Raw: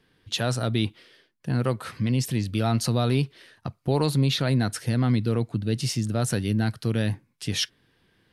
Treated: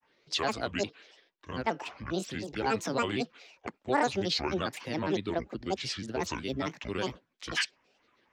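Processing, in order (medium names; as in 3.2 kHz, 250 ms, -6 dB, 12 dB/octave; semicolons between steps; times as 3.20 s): granulator, grains 22 per s, spray 10 ms, pitch spread up and down by 12 st; three-band isolator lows -18 dB, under 290 Hz, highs -22 dB, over 6.3 kHz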